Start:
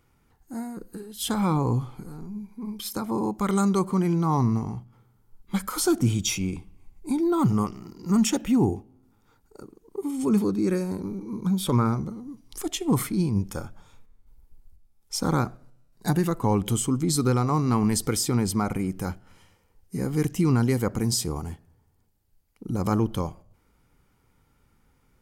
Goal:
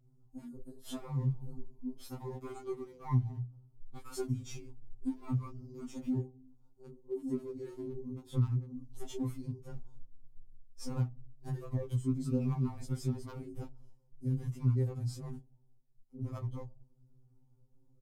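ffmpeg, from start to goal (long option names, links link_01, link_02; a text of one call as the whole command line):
ffmpeg -i in.wav -filter_complex "[0:a]lowshelf=frequency=220:gain=11.5,flanger=delay=16:depth=5.2:speed=0.25,acrossover=split=300|900|4500[link_01][link_02][link_03][link_04];[link_03]acrusher=bits=5:dc=4:mix=0:aa=0.000001[link_05];[link_01][link_02][link_05][link_04]amix=inputs=4:normalize=0,highshelf=frequency=4900:gain=-10,atempo=1.4,acompressor=threshold=-29dB:ratio=2.5,afftfilt=real='re*2.45*eq(mod(b,6),0)':imag='im*2.45*eq(mod(b,6),0)':win_size=2048:overlap=0.75,volume=-4.5dB" out.wav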